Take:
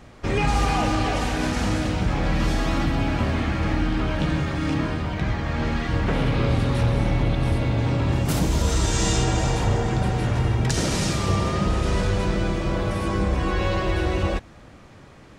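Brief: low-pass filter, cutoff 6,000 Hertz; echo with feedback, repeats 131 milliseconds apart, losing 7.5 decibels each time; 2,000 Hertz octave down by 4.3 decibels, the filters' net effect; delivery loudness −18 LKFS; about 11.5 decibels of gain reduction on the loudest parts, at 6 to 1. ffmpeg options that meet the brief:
ffmpeg -i in.wav -af "lowpass=6000,equalizer=frequency=2000:width_type=o:gain=-5.5,acompressor=threshold=-30dB:ratio=6,aecho=1:1:131|262|393|524|655:0.422|0.177|0.0744|0.0312|0.0131,volume=15.5dB" out.wav

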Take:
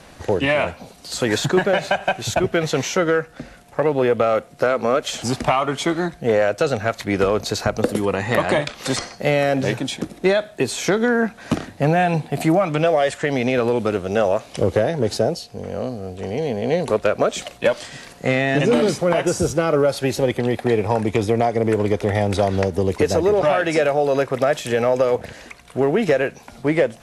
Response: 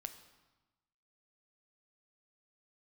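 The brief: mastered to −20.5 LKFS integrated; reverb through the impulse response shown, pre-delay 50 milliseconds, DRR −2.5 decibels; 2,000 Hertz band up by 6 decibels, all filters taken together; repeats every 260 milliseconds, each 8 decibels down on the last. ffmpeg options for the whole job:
-filter_complex "[0:a]equalizer=frequency=2000:width_type=o:gain=7.5,aecho=1:1:260|520|780|1040|1300:0.398|0.159|0.0637|0.0255|0.0102,asplit=2[link_01][link_02];[1:a]atrim=start_sample=2205,adelay=50[link_03];[link_02][link_03]afir=irnorm=-1:irlink=0,volume=6dB[link_04];[link_01][link_04]amix=inputs=2:normalize=0,volume=-7dB"

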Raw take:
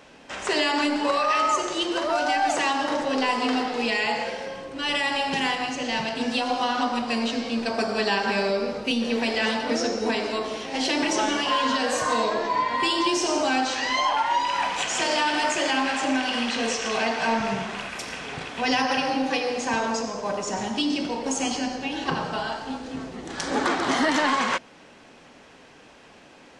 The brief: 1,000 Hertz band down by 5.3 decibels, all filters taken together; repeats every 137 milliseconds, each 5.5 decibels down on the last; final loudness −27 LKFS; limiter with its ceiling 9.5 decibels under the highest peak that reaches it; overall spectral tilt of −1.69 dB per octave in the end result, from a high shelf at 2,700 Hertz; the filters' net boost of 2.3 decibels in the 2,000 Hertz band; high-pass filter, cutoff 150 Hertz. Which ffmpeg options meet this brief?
ffmpeg -i in.wav -af "highpass=150,equalizer=frequency=1000:width_type=o:gain=-8,equalizer=frequency=2000:width_type=o:gain=3,highshelf=frequency=2700:gain=5,alimiter=limit=-18dB:level=0:latency=1,aecho=1:1:137|274|411|548|685|822|959:0.531|0.281|0.149|0.079|0.0419|0.0222|0.0118,volume=-1.5dB" out.wav

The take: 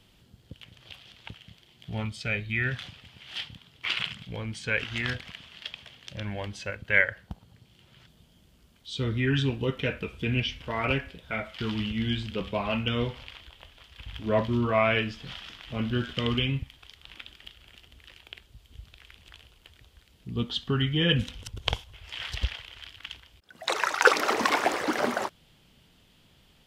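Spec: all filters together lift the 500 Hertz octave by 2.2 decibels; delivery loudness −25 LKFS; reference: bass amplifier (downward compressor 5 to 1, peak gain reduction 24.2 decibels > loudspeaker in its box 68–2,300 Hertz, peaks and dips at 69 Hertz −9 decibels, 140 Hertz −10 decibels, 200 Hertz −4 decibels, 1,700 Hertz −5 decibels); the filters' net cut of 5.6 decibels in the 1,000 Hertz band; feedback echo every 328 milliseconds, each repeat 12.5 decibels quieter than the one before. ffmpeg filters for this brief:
ffmpeg -i in.wav -af "equalizer=frequency=500:width_type=o:gain=5.5,equalizer=frequency=1000:width_type=o:gain=-9,aecho=1:1:328|656|984:0.237|0.0569|0.0137,acompressor=threshold=-39dB:ratio=5,highpass=frequency=68:width=0.5412,highpass=frequency=68:width=1.3066,equalizer=frequency=69:width_type=q:width=4:gain=-9,equalizer=frequency=140:width_type=q:width=4:gain=-10,equalizer=frequency=200:width_type=q:width=4:gain=-4,equalizer=frequency=1700:width_type=q:width=4:gain=-5,lowpass=frequency=2300:width=0.5412,lowpass=frequency=2300:width=1.3066,volume=21dB" out.wav

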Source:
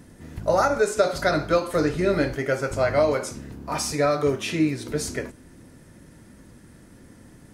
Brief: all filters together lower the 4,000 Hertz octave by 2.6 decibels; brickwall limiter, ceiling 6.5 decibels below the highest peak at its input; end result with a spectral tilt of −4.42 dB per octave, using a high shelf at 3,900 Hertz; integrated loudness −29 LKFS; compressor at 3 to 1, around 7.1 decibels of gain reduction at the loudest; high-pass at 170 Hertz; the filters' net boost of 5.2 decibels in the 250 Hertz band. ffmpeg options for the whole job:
ffmpeg -i in.wav -af "highpass=170,equalizer=frequency=250:width_type=o:gain=8,highshelf=frequency=3900:gain=5.5,equalizer=frequency=4000:width_type=o:gain=-7.5,acompressor=threshold=-22dB:ratio=3,volume=-0.5dB,alimiter=limit=-18.5dB:level=0:latency=1" out.wav

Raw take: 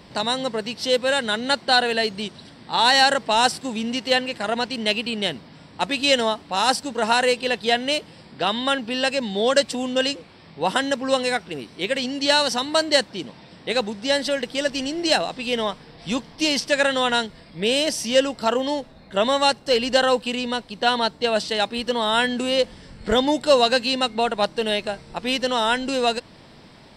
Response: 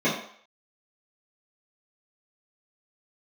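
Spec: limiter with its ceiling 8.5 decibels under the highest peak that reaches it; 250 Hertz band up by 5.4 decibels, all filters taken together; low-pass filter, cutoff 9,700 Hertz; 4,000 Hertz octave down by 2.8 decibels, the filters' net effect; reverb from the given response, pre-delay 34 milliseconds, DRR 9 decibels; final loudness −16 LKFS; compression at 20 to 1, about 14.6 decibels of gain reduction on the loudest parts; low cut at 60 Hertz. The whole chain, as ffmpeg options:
-filter_complex "[0:a]highpass=60,lowpass=9700,equalizer=frequency=250:width_type=o:gain=6,equalizer=frequency=4000:width_type=o:gain=-3.5,acompressor=threshold=-26dB:ratio=20,alimiter=limit=-23.5dB:level=0:latency=1,asplit=2[link_01][link_02];[1:a]atrim=start_sample=2205,adelay=34[link_03];[link_02][link_03]afir=irnorm=-1:irlink=0,volume=-24.5dB[link_04];[link_01][link_04]amix=inputs=2:normalize=0,volume=15.5dB"

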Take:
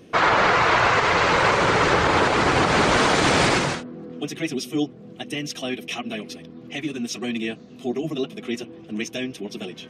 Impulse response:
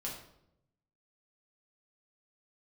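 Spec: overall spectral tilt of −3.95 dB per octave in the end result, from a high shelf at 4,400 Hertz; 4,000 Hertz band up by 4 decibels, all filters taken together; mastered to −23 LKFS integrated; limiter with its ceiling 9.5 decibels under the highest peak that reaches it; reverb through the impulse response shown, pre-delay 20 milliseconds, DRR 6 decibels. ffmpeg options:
-filter_complex "[0:a]equalizer=frequency=4000:width_type=o:gain=7.5,highshelf=frequency=4400:gain=-4.5,alimiter=limit=-15dB:level=0:latency=1,asplit=2[link_01][link_02];[1:a]atrim=start_sample=2205,adelay=20[link_03];[link_02][link_03]afir=irnorm=-1:irlink=0,volume=-6.5dB[link_04];[link_01][link_04]amix=inputs=2:normalize=0,volume=1.5dB"

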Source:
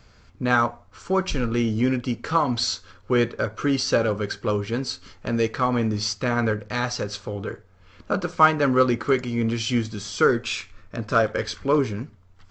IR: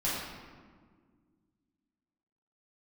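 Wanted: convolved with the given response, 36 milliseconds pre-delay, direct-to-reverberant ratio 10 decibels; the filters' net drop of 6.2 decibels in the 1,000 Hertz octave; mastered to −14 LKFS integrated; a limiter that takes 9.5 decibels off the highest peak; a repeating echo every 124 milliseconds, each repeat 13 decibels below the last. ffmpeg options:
-filter_complex "[0:a]equalizer=frequency=1000:width_type=o:gain=-8.5,alimiter=limit=-18.5dB:level=0:latency=1,aecho=1:1:124|248|372:0.224|0.0493|0.0108,asplit=2[link_01][link_02];[1:a]atrim=start_sample=2205,adelay=36[link_03];[link_02][link_03]afir=irnorm=-1:irlink=0,volume=-18dB[link_04];[link_01][link_04]amix=inputs=2:normalize=0,volume=14dB"

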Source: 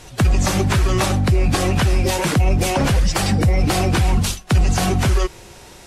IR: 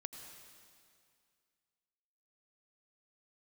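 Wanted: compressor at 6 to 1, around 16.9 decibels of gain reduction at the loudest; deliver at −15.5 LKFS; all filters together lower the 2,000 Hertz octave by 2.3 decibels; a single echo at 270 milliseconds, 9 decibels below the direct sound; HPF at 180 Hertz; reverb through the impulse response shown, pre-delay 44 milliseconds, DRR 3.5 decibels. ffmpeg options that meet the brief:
-filter_complex "[0:a]highpass=180,equalizer=frequency=2000:width_type=o:gain=-3,acompressor=threshold=-36dB:ratio=6,aecho=1:1:270:0.355,asplit=2[link_01][link_02];[1:a]atrim=start_sample=2205,adelay=44[link_03];[link_02][link_03]afir=irnorm=-1:irlink=0,volume=-0.5dB[link_04];[link_01][link_04]amix=inputs=2:normalize=0,volume=20dB"

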